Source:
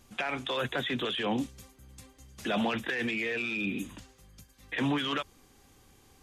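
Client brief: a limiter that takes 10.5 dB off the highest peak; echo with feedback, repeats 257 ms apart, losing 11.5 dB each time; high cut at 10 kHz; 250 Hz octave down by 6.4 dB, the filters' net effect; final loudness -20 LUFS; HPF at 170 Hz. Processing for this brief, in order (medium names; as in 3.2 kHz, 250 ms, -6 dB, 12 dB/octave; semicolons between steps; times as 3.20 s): high-pass 170 Hz; low-pass 10 kHz; peaking EQ 250 Hz -6.5 dB; peak limiter -30 dBFS; feedback delay 257 ms, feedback 27%, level -11.5 dB; trim +18.5 dB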